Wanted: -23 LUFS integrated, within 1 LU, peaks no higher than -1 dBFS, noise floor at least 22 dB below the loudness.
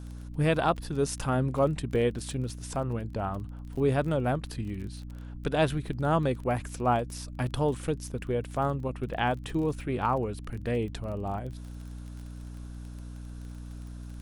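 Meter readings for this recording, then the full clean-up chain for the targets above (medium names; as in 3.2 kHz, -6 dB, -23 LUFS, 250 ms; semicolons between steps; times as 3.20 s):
tick rate 24 per s; hum 60 Hz; highest harmonic 300 Hz; hum level -38 dBFS; loudness -30.0 LUFS; peak level -12.5 dBFS; loudness target -23.0 LUFS
-> de-click; de-hum 60 Hz, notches 5; trim +7 dB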